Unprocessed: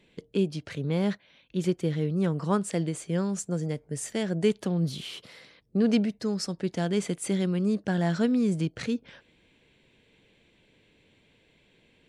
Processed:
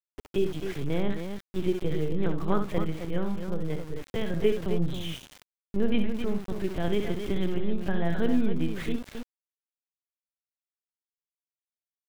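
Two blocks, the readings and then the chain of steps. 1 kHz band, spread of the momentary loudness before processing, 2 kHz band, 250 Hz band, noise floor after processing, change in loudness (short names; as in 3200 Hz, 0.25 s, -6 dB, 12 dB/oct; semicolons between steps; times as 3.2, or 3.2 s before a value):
-0.5 dB, 8 LU, -0.5 dB, -2.5 dB, under -85 dBFS, -2.0 dB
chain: LPC vocoder at 8 kHz pitch kept; loudspeakers at several distances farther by 22 m -8 dB, 91 m -8 dB; sample gate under -39 dBFS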